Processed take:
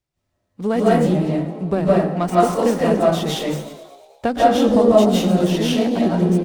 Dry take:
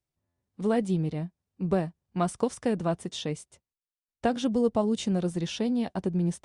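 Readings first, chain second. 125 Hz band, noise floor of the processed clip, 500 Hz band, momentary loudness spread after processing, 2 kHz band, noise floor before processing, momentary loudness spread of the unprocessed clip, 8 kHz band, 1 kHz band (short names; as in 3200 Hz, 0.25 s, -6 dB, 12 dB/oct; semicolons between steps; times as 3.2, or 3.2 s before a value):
+9.5 dB, -74 dBFS, +13.0 dB, 10 LU, +12.0 dB, under -85 dBFS, 9 LU, +8.5 dB, +14.5 dB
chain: frequency-shifting echo 0.114 s, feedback 64%, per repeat +64 Hz, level -15.5 dB; digital reverb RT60 0.51 s, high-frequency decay 0.55×, pre-delay 0.12 s, DRR -7 dB; running maximum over 3 samples; gain +5 dB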